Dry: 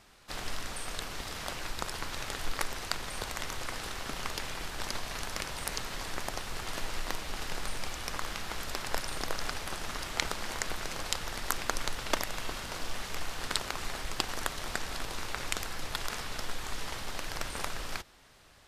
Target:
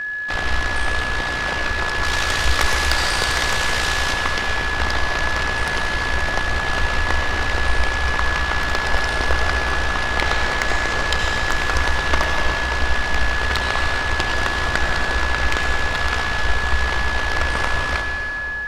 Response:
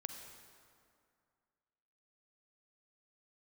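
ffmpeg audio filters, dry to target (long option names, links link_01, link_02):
-filter_complex "[0:a]aemphasis=mode=reproduction:type=bsi,tremolo=f=59:d=0.71,asplit=3[link_01][link_02][link_03];[link_01]afade=type=out:start_time=2.03:duration=0.02[link_04];[link_02]highshelf=frequency=3600:gain=12,afade=type=in:start_time=2.03:duration=0.02,afade=type=out:start_time=4.12:duration=0.02[link_05];[link_03]afade=type=in:start_time=4.12:duration=0.02[link_06];[link_04][link_05][link_06]amix=inputs=3:normalize=0[link_07];[1:a]atrim=start_sample=2205,asetrate=27783,aresample=44100[link_08];[link_07][link_08]afir=irnorm=-1:irlink=0,aeval=exprs='val(0)+0.00631*sin(2*PI*1700*n/s)':channel_layout=same,asplit=2[link_09][link_10];[link_10]highpass=frequency=720:poles=1,volume=21dB,asoftclip=type=tanh:threshold=-8dB[link_11];[link_09][link_11]amix=inputs=2:normalize=0,lowpass=frequency=5200:poles=1,volume=-6dB,volume=6dB"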